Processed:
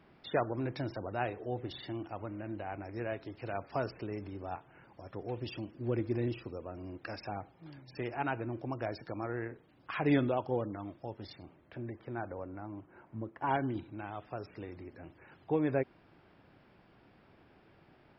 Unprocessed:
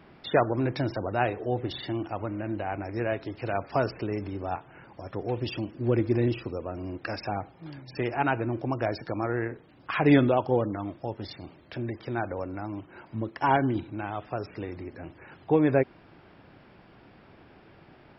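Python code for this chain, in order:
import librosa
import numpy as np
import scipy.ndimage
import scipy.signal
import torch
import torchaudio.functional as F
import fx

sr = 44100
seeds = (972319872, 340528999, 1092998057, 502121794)

y = fx.lowpass(x, sr, hz=fx.line((11.42, 2400.0), (13.46, 1600.0)), slope=12, at=(11.42, 13.46), fade=0.02)
y = y * 10.0 ** (-8.5 / 20.0)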